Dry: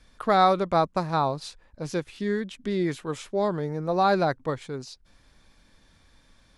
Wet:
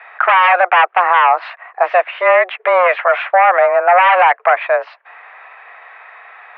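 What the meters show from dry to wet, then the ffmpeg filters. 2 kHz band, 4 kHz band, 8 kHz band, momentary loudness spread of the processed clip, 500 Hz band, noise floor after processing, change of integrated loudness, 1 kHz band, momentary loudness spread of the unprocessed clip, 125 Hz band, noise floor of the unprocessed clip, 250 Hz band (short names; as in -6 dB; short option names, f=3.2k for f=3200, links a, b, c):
+22.0 dB, +9.0 dB, under -25 dB, 6 LU, +12.0 dB, -45 dBFS, +13.5 dB, +15.0 dB, 16 LU, under -40 dB, -61 dBFS, under -15 dB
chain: -af "aeval=exprs='0.447*sin(PI/2*5.01*val(0)/0.447)':c=same,highpass=f=510:t=q:w=0.5412,highpass=f=510:t=q:w=1.307,lowpass=f=2.2k:t=q:w=0.5176,lowpass=f=2.2k:t=q:w=0.7071,lowpass=f=2.2k:t=q:w=1.932,afreqshift=180,alimiter=level_in=12dB:limit=-1dB:release=50:level=0:latency=1,volume=-1dB"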